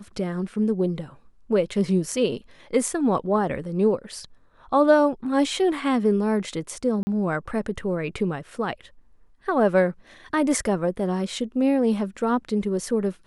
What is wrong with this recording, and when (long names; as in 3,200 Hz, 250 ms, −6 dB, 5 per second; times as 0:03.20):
0:07.03–0:07.07: drop-out 40 ms